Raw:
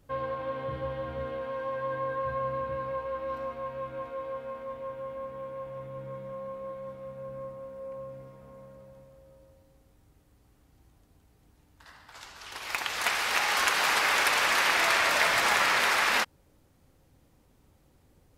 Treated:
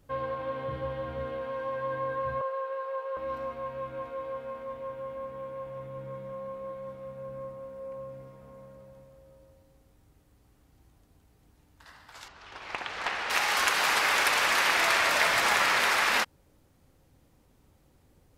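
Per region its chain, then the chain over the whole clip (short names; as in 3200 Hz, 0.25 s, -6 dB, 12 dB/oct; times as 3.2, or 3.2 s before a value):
2.41–3.17 rippled Chebyshev high-pass 360 Hz, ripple 3 dB + bell 2200 Hz -5 dB 0.26 oct
12.28–13.3 tape spacing loss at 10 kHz 20 dB + flutter echo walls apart 10.3 m, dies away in 0.24 s + Doppler distortion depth 0.32 ms
whole clip: dry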